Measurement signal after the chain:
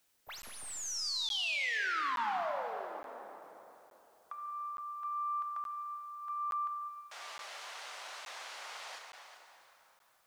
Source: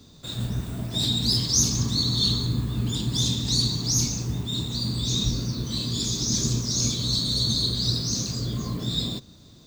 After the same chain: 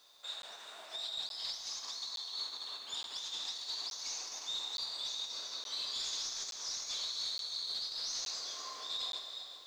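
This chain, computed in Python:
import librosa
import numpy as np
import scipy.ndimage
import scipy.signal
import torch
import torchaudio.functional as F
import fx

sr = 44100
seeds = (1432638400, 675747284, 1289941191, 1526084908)

p1 = fx.tracing_dist(x, sr, depth_ms=0.023)
p2 = p1 + fx.echo_single(p1, sr, ms=389, db=-12.5, dry=0)
p3 = fx.over_compress(p2, sr, threshold_db=-27.0, ratio=-0.5)
p4 = scipy.signal.sosfilt(scipy.signal.butter(4, 670.0, 'highpass', fs=sr, output='sos'), p3)
p5 = np.clip(p4, -10.0 ** (-25.5 / 20.0), 10.0 ** (-25.5 / 20.0))
p6 = scipy.signal.sosfilt(scipy.signal.butter(2, 5900.0, 'lowpass', fs=sr, output='sos'), p5)
p7 = fx.rev_plate(p6, sr, seeds[0], rt60_s=3.5, hf_ratio=0.7, predelay_ms=0, drr_db=2.5)
p8 = fx.dmg_noise_colour(p7, sr, seeds[1], colour='white', level_db=-66.0)
p9 = fx.buffer_crackle(p8, sr, first_s=0.42, period_s=0.87, block=512, kind='zero')
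y = p9 * librosa.db_to_amplitude(-8.0)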